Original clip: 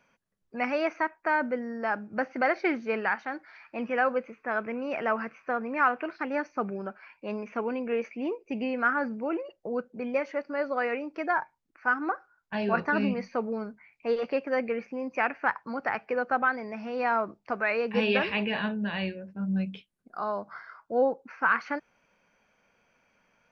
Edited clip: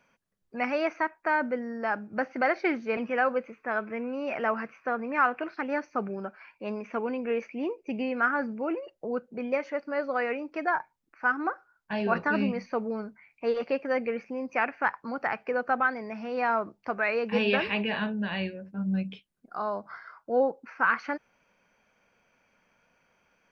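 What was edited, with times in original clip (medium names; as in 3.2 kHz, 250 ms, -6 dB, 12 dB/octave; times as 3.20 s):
2.97–3.77 s: delete
4.59–4.95 s: stretch 1.5×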